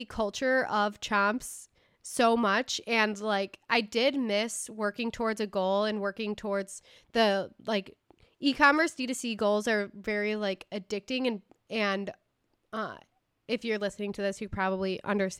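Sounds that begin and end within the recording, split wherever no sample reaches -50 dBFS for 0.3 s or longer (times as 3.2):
2.05–12.14
12.73–13.04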